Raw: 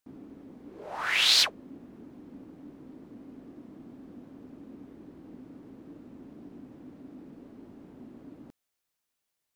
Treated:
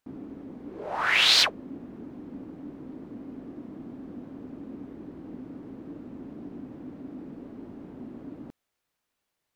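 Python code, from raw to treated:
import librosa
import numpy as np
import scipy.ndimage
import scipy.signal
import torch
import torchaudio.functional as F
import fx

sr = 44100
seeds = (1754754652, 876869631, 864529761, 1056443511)

y = fx.high_shelf(x, sr, hz=4000.0, db=-9.5)
y = y * 10.0 ** (6.5 / 20.0)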